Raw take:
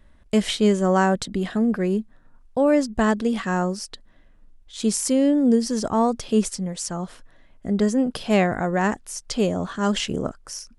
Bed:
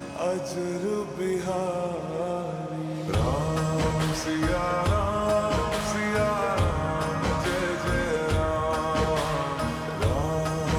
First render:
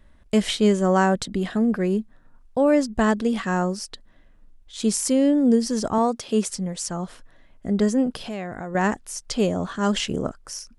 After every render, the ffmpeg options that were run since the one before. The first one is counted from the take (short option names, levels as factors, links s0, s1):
-filter_complex "[0:a]asettb=1/sr,asplit=3[s0][s1][s2];[s0]atrim=end=5.984[s3];[s1]atrim=start=5.98:end=6.5,asetpts=PTS-STARTPTS,afade=t=in:d=0.004:c=qsin,afade=t=out:st=0.516:d=0.004:c=qsin,highpass=f=200:p=1[s4];[s2]atrim=start=6.496[s5];[s3][s4]acrossfade=d=0.004:c1=hsin:c2=qsin[s6];[s6][s5]acrossfade=d=0.004:c1=qsin:c2=hsin,asettb=1/sr,asplit=3[s7][s8][s9];[s7]atrim=end=8.124[s10];[s8]atrim=start=8.12:end=8.75,asetpts=PTS-STARTPTS,afade=t=in:d=0.004:c=qsin,afade=t=out:st=0.626:d=0.004:c=qsin,acompressor=threshold=0.0282:ratio=3:attack=3.2:release=140:knee=1:detection=peak[s11];[s9]atrim=start=8.746[s12];[s10][s11]acrossfade=d=0.004:c1=hsin:c2=qsin[s13];[s13][s12]acrossfade=d=0.004:c1=qsin:c2=hsin"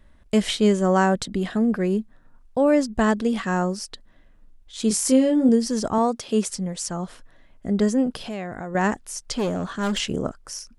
-filter_complex "[0:a]asettb=1/sr,asplit=3[s0][s1][s2];[s0]atrim=end=4.884[s3];[s1]atrim=start=4.88:end=5.49,asetpts=PTS-STARTPTS,afade=t=in:d=0.004:c=qsin,afade=t=out:st=0.606:d=0.004:c=qsin,asplit=2[s4][s5];[s5]adelay=23,volume=0.631[s6];[s4][s6]amix=inputs=2:normalize=0,atrim=end_sample=26901[s7];[s2]atrim=start=5.486[s8];[s3][s7]acrossfade=d=0.004:c1=hsin:c2=qsin[s9];[s9][s8]acrossfade=d=0.004:c1=qsin:c2=hsin,asettb=1/sr,asplit=3[s10][s11][s12];[s10]atrim=end=9.354[s13];[s11]atrim=start=9.35:end=9.98,asetpts=PTS-STARTPTS,afade=t=in:d=0.004:c=qsin,afade=t=out:st=0.626:d=0.004:c=qsin,asoftclip=type=hard:threshold=0.1[s14];[s12]atrim=start=9.976[s15];[s13][s14]acrossfade=d=0.004:c1=hsin:c2=qsin[s16];[s16][s15]acrossfade=d=0.004:c1=qsin:c2=hsin"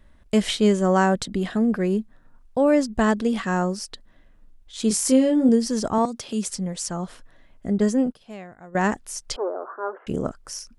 -filter_complex "[0:a]asettb=1/sr,asplit=3[s0][s1][s2];[s0]atrim=end=6.054[s3];[s1]atrim=start=6.05:end=6.49,asetpts=PTS-STARTPTS,afade=t=in:d=0.004:c=qsin,afade=t=out:st=0.436:d=0.004:c=qsin,acrossover=split=240|3000[s4][s5][s6];[s5]acompressor=threshold=0.0224:ratio=6:attack=3.2:release=140:knee=2.83:detection=peak[s7];[s4][s7][s6]amix=inputs=3:normalize=0[s8];[s2]atrim=start=6.486[s9];[s3][s8]acrossfade=d=0.004:c1=hsin:c2=qsin[s10];[s10][s9]acrossfade=d=0.004:c1=qsin:c2=hsin,asettb=1/sr,asplit=3[s11][s12][s13];[s11]atrim=end=7.784[s14];[s12]atrim=start=7.78:end=8.83,asetpts=PTS-STARTPTS,afade=t=in:d=0.004:c=qsin,afade=t=out:st=1.046:d=0.004:c=qsin,agate=range=0.0224:threshold=0.0562:ratio=3:release=100:detection=peak[s15];[s13]atrim=start=8.826[s16];[s14][s15]acrossfade=d=0.004:c1=hsin:c2=qsin[s17];[s17][s16]acrossfade=d=0.004:c1=qsin:c2=hsin,asettb=1/sr,asplit=3[s18][s19][s20];[s18]atrim=end=9.364[s21];[s19]atrim=start=9.36:end=10.07,asetpts=PTS-STARTPTS,afade=t=in:d=0.004:c=qsin,afade=t=out:st=0.706:d=0.004:c=qsin,asuperpass=centerf=700:order=12:qfactor=0.64[s22];[s20]atrim=start=10.066[s23];[s21][s22]acrossfade=d=0.004:c1=hsin:c2=qsin[s24];[s24][s23]acrossfade=d=0.004:c1=qsin:c2=hsin"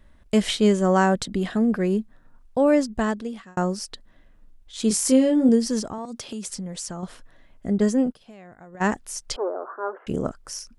-filter_complex "[0:a]asettb=1/sr,asplit=3[s0][s1][s2];[s0]atrim=end=5.814[s3];[s1]atrim=start=5.81:end=7.03,asetpts=PTS-STARTPTS,afade=t=in:d=0.004:c=qsin,afade=t=out:st=1.216:d=0.004:c=qsin,acompressor=threshold=0.0398:ratio=12:attack=3.2:release=140:knee=1:detection=peak[s4];[s2]atrim=start=7.026[s5];[s3][s4]acrossfade=d=0.004:c1=hsin:c2=qsin[s6];[s6][s5]acrossfade=d=0.004:c1=qsin:c2=hsin,asplit=3[s7][s8][s9];[s7]afade=t=out:st=8.19:d=0.02[s10];[s8]acompressor=threshold=0.0112:ratio=10:attack=3.2:release=140:knee=1:detection=peak,afade=t=in:st=8.19:d=0.02,afade=t=out:st=8.8:d=0.02[s11];[s9]afade=t=in:st=8.8:d=0.02[s12];[s10][s11][s12]amix=inputs=3:normalize=0,asplit=2[s13][s14];[s13]atrim=end=3.57,asetpts=PTS-STARTPTS,afade=t=out:st=2.74:d=0.83[s15];[s14]atrim=start=3.57,asetpts=PTS-STARTPTS,afade=t=in:d=0.004:c=hsin[s16];[s15][s16]concat=n=2:v=0:a=1"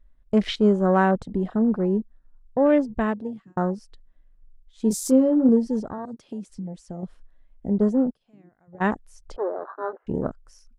-af "afwtdn=0.0251,highshelf=f=4200:g=-7"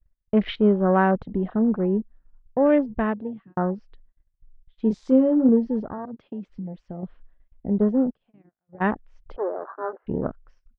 -af "agate=range=0.0562:threshold=0.00316:ratio=16:detection=peak,lowpass=f=3100:w=0.5412,lowpass=f=3100:w=1.3066"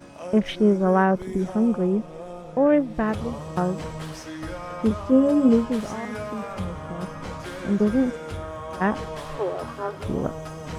-filter_complex "[1:a]volume=0.376[s0];[0:a][s0]amix=inputs=2:normalize=0"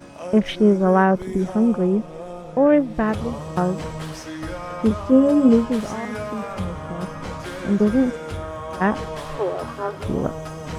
-af "volume=1.41"